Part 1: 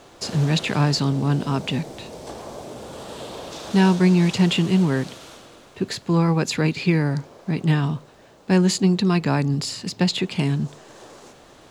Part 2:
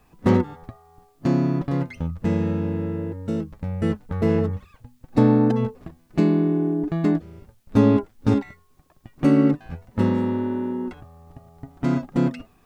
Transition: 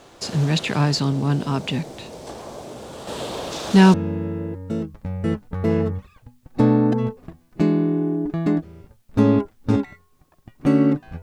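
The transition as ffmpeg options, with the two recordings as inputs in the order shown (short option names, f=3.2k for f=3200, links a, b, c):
-filter_complex "[0:a]asettb=1/sr,asplit=3[a][b][c];[a]atrim=end=3.074[d];[b]atrim=start=3.07:end=3.94,asetpts=PTS-STARTPTS,afade=t=in:d=0.004:c=qsin,afade=t=out:st=0.866:d=0.004:c=qsin,acontrast=36[e];[c]atrim=start=3.936[f];[d][e]acrossfade=d=0.004:c1=hsin:c2=qsin[g];[g][f]acrossfade=d=0.004:c1=qsin:c2=hsin,apad=whole_dur=11.22,atrim=end=11.22,atrim=end=3.942[h];[1:a]atrim=start=2.518:end=9.8[i];[h][i]acrossfade=d=0.004:c1=hsin:c2=hsin"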